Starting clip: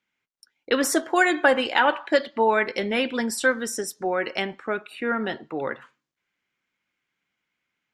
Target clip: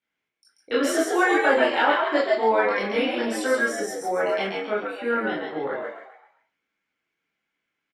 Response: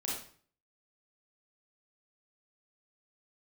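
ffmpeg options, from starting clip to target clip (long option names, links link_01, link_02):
-filter_complex "[0:a]highshelf=frequency=8000:gain=-8.5,asplit=6[link_01][link_02][link_03][link_04][link_05][link_06];[link_02]adelay=135,afreqshift=83,volume=-4dB[link_07];[link_03]adelay=270,afreqshift=166,volume=-12.2dB[link_08];[link_04]adelay=405,afreqshift=249,volume=-20.4dB[link_09];[link_05]adelay=540,afreqshift=332,volume=-28.5dB[link_10];[link_06]adelay=675,afreqshift=415,volume=-36.7dB[link_11];[link_01][link_07][link_08][link_09][link_10][link_11]amix=inputs=6:normalize=0[link_12];[1:a]atrim=start_sample=2205,asetrate=74970,aresample=44100[link_13];[link_12][link_13]afir=irnorm=-1:irlink=0"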